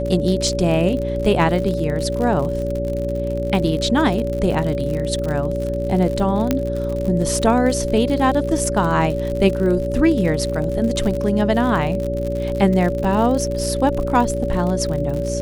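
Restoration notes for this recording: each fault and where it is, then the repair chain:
surface crackle 57 per second −24 dBFS
mains hum 60 Hz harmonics 7 −25 dBFS
whistle 570 Hz −23 dBFS
0:06.51: click −4 dBFS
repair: click removal
hum removal 60 Hz, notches 7
notch filter 570 Hz, Q 30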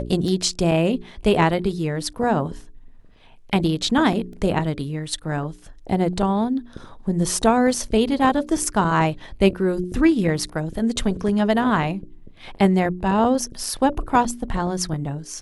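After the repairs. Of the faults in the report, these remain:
none of them is left

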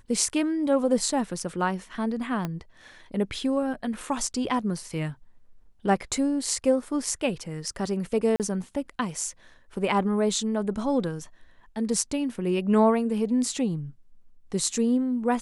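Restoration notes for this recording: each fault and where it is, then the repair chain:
0:02.45: click −16 dBFS
0:08.36–0:08.40: drop-out 38 ms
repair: click removal
repair the gap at 0:08.36, 38 ms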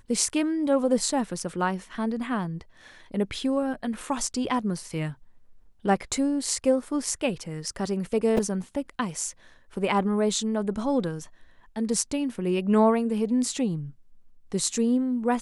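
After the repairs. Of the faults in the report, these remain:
0:02.45: click

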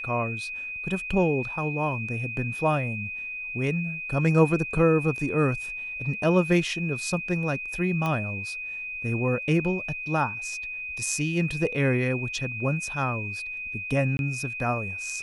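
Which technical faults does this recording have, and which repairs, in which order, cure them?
whistle 2,500 Hz −32 dBFS
0:08.06: click −16 dBFS
0:14.17–0:14.19: drop-out 21 ms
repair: click removal
notch filter 2,500 Hz, Q 30
repair the gap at 0:14.17, 21 ms

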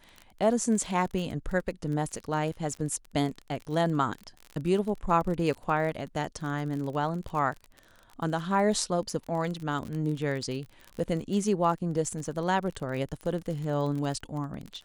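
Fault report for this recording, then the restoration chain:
surface crackle 32 per second −34 dBFS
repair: click removal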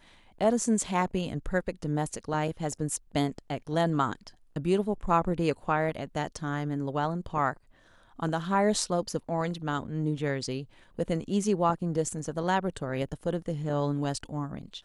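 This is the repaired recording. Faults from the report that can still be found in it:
none of them is left

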